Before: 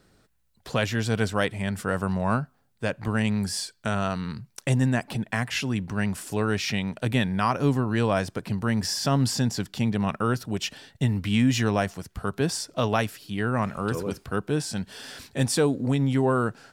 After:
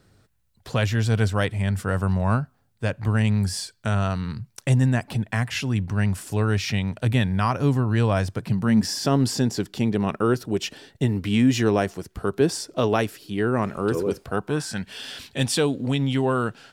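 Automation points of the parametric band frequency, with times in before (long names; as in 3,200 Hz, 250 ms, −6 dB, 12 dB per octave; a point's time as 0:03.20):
parametric band +9.5 dB 0.79 octaves
0:08.30 96 Hz
0:09.08 370 Hz
0:14.06 370 Hz
0:15.01 3,100 Hz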